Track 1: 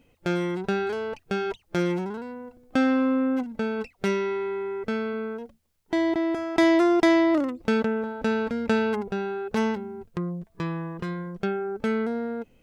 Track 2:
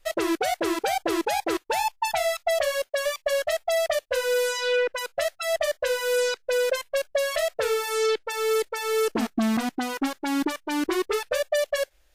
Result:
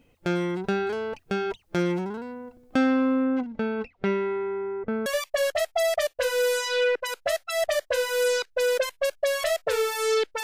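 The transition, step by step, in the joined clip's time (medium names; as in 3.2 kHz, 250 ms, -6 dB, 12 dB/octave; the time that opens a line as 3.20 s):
track 1
3.24–5.06 s: low-pass 4.9 kHz -> 1.3 kHz
5.06 s: go over to track 2 from 2.98 s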